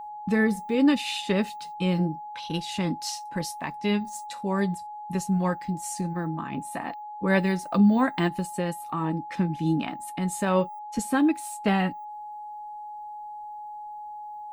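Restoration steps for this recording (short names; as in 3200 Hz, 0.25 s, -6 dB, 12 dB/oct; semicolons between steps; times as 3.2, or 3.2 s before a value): notch 840 Hz, Q 30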